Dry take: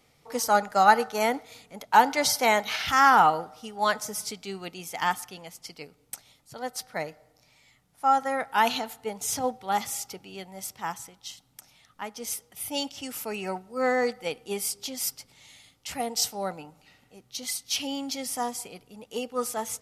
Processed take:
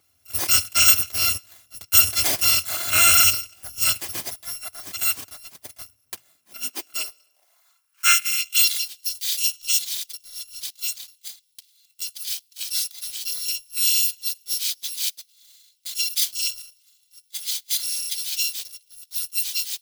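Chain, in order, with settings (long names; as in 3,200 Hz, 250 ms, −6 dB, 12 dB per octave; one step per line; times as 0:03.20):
samples in bit-reversed order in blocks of 256 samples
high-pass filter sweep 92 Hz → 3,700 Hz, 0:05.97–0:08.71
leveller curve on the samples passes 1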